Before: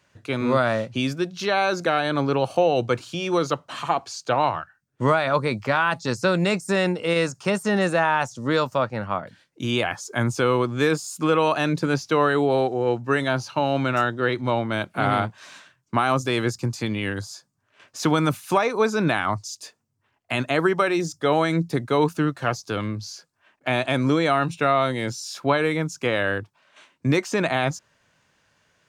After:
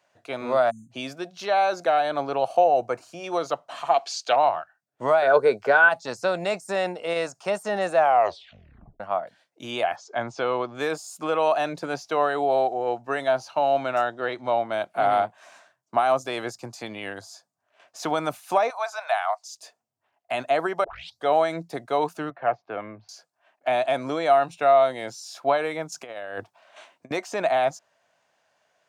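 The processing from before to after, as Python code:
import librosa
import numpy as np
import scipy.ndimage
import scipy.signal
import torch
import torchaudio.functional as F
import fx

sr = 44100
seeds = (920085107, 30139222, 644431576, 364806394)

y = fx.spec_erase(x, sr, start_s=0.7, length_s=0.21, low_hz=310.0, high_hz=6200.0)
y = fx.peak_eq(y, sr, hz=3400.0, db=-14.5, octaves=0.55, at=(2.64, 3.24))
y = fx.weighting(y, sr, curve='D', at=(3.94, 4.36))
y = fx.small_body(y, sr, hz=(430.0, 1500.0), ring_ms=45, db=17, at=(5.22, 5.89))
y = fx.lowpass(y, sr, hz=5600.0, slope=24, at=(9.96, 10.75))
y = fx.steep_lowpass(y, sr, hz=9100.0, slope=36, at=(14.09, 14.68))
y = fx.peak_eq(y, sr, hz=fx.line((15.24, 5700.0), (15.96, 2000.0)), db=-7.0, octaves=0.77, at=(15.24, 15.96), fade=0.02)
y = fx.ellip_highpass(y, sr, hz=670.0, order=4, stop_db=50, at=(18.7, 19.5))
y = fx.cheby1_bandpass(y, sr, low_hz=110.0, high_hz=2300.0, order=3, at=(22.3, 23.09))
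y = fx.over_compress(y, sr, threshold_db=-29.0, ratio=-0.5, at=(25.92, 27.11))
y = fx.edit(y, sr, fx.tape_stop(start_s=7.96, length_s=1.04),
    fx.tape_start(start_s=20.84, length_s=0.4), tone=tone)
y = fx.highpass(y, sr, hz=440.0, slope=6)
y = fx.peak_eq(y, sr, hz=690.0, db=14.5, octaves=0.59)
y = y * librosa.db_to_amplitude(-6.0)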